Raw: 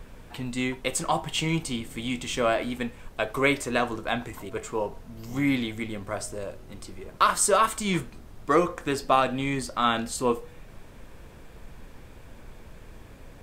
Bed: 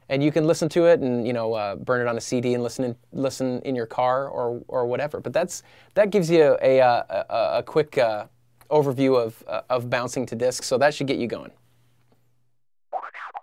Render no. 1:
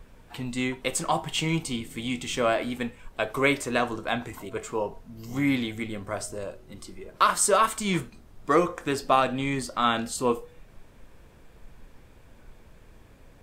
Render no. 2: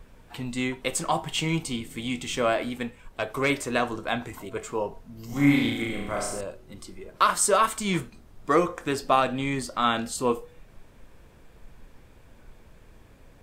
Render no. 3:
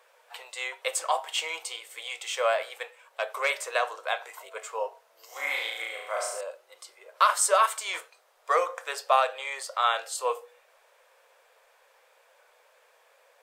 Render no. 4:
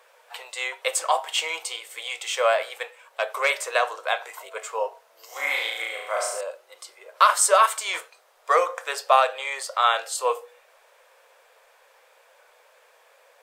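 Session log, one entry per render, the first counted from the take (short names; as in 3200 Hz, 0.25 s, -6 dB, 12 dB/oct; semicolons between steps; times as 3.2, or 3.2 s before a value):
noise print and reduce 6 dB
2.69–3.5 tube stage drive 15 dB, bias 0.4; 5.26–6.41 flutter echo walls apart 6 m, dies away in 0.8 s
elliptic high-pass 510 Hz, stop band 50 dB
gain +4.5 dB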